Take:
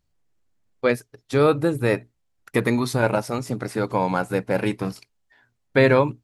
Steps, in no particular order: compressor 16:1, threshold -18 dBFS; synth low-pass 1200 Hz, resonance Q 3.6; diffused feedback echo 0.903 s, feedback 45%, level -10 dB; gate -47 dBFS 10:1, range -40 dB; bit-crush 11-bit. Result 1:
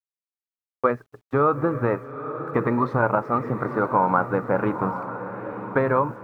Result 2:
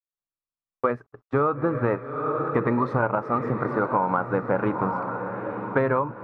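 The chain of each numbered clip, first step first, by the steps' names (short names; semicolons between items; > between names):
compressor > synth low-pass > gate > bit-crush > diffused feedback echo; diffused feedback echo > bit-crush > synth low-pass > compressor > gate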